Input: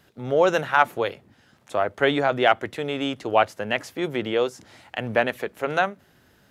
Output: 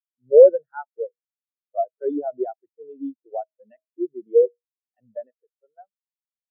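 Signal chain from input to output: fade out at the end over 1.62 s; high-pass 76 Hz 6 dB/octave; de-hum 159.6 Hz, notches 4; loudness maximiser +10.5 dB; spectral contrast expander 4:1; trim -1 dB

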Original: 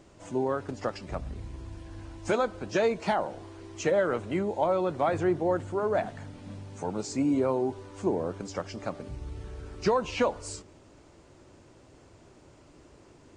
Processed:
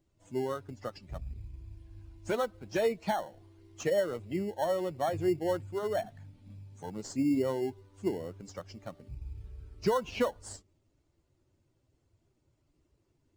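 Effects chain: expander on every frequency bin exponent 1.5; 3.92–5.47 s: peaking EQ 1.5 kHz -6 dB 0.66 oct; in parallel at -9 dB: sample-and-hold 18×; on the sum: trim -3.5 dB

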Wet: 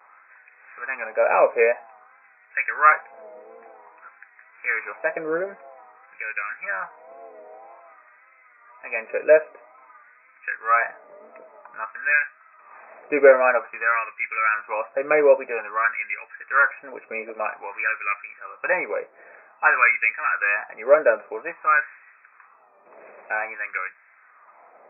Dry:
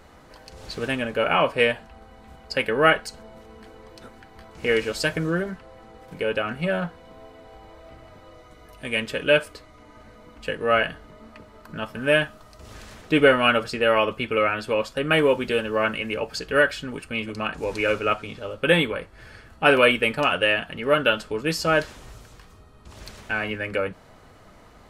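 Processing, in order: wow and flutter 79 cents; LFO high-pass sine 0.51 Hz 510–1800 Hz; FFT band-pass 130–2600 Hz; trim -1.5 dB

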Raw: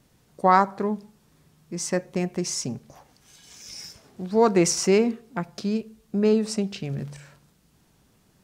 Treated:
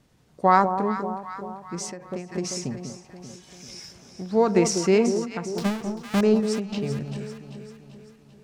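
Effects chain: 5.57–6.21 s: square wave that keeps the level; treble shelf 9.7 kHz -11 dB; on a send: echo whose repeats swap between lows and highs 195 ms, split 980 Hz, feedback 71%, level -7 dB; on the sum: endings held to a fixed fall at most 110 dB/s

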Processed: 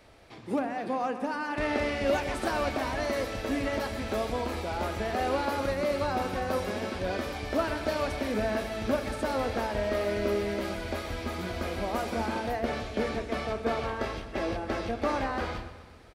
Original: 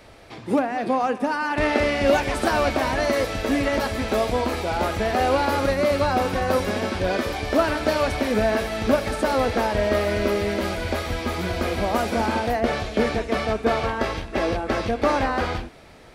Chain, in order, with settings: feedback delay 127 ms, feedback 57%, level -14 dB; on a send at -16.5 dB: reverberation RT60 1.1 s, pre-delay 3 ms; on the sum: trim -8.5 dB

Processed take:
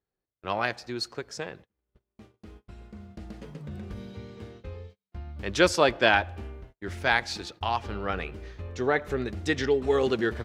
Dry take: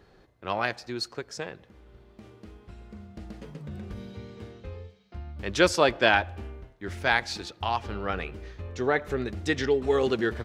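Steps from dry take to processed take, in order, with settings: gate -47 dBFS, range -32 dB

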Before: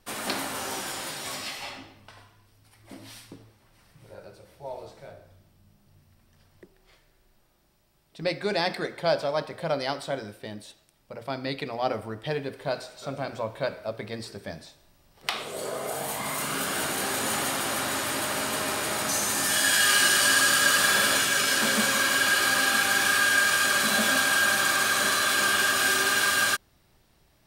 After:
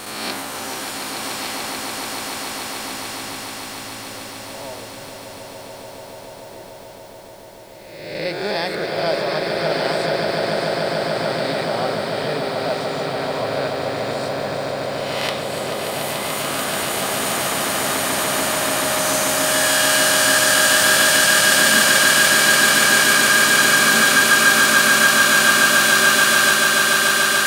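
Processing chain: reverse spectral sustain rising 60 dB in 1.20 s; echo with a slow build-up 145 ms, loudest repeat 8, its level -7 dB; bit crusher 8-bit

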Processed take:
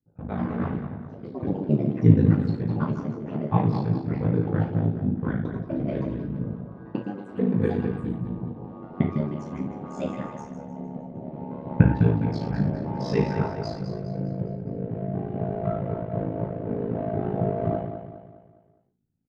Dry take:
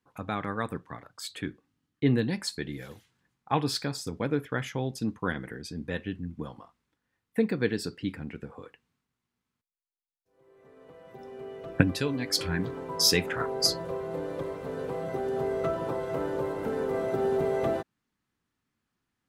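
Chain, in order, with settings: local Wiener filter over 41 samples; peaking EQ 140 Hz +9 dB 1.2 oct; gated-style reverb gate 160 ms falling, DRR -5 dB; ring modulator 27 Hz; on a send: feedback delay 205 ms, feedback 44%, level -9 dB; on the sum: ever faster or slower copies 163 ms, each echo +5 st, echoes 3, each echo -6 dB; tape spacing loss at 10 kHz 42 dB; trim -1 dB

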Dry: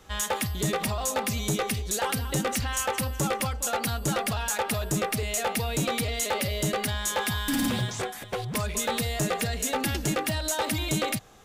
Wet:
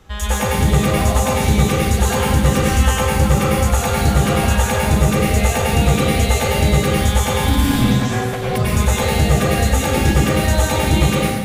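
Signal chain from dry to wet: tone controls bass +6 dB, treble -4 dB; plate-style reverb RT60 1.4 s, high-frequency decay 0.8×, pre-delay 85 ms, DRR -7 dB; trim +2.5 dB

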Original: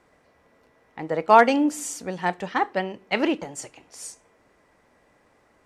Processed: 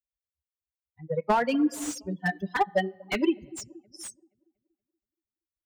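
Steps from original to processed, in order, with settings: expander on every frequency bin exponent 3; on a send at -12 dB: reverberation RT60 0.85 s, pre-delay 3 ms; on the sum: compression 8:1, threshold -26 dBFS, peak gain reduction 15 dB; 2.29–3.15 s: treble shelf 3.2 kHz +7.5 dB; feedback echo behind a low-pass 237 ms, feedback 42%, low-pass 470 Hz, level -15 dB; in parallel at -5.5 dB: saturation -23.5 dBFS, distortion -15 dB; on the sum: reverb removal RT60 0.6 s; slew-rate limiter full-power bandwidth 64 Hz; trim +4.5 dB

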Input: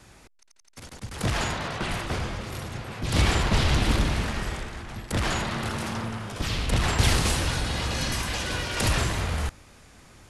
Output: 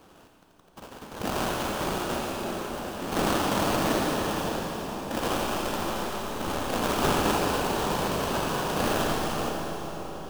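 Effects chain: high-pass 220 Hz 24 dB/octave; sample-rate reducer 2.1 kHz, jitter 20%; on a send: two-band feedback delay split 1.1 kHz, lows 605 ms, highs 83 ms, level -9 dB; on the sum: Schroeder reverb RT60 3.9 s, combs from 30 ms, DRR 2 dB

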